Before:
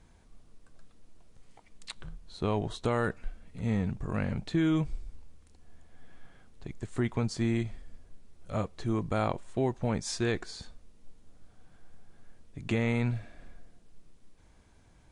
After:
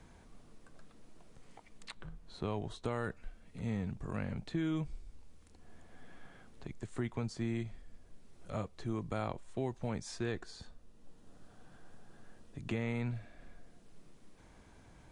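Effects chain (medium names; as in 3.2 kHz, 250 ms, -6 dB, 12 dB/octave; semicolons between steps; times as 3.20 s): 10.28–12.71 s: band-stop 2.2 kHz, Q 8.9; three bands compressed up and down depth 40%; trim -7 dB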